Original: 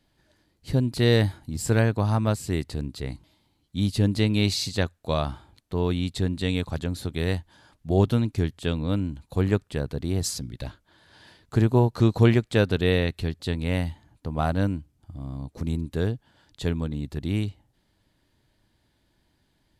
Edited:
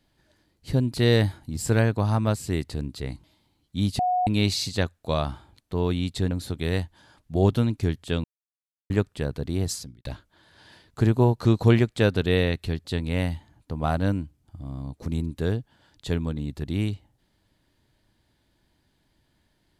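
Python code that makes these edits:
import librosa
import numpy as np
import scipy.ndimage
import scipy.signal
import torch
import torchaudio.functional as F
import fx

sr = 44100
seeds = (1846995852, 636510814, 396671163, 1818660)

y = fx.edit(x, sr, fx.bleep(start_s=3.99, length_s=0.28, hz=728.0, db=-20.0),
    fx.cut(start_s=6.31, length_s=0.55),
    fx.silence(start_s=8.79, length_s=0.66),
    fx.fade_out_span(start_s=10.17, length_s=0.43), tone=tone)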